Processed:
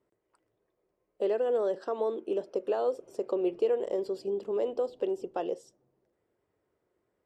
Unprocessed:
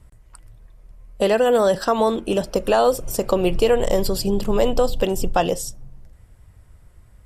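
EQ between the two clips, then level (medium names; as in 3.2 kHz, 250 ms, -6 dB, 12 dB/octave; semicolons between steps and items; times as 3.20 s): band-pass filter 380 Hz, Q 3.2; distance through air 53 m; tilt EQ +4.5 dB/octave; 0.0 dB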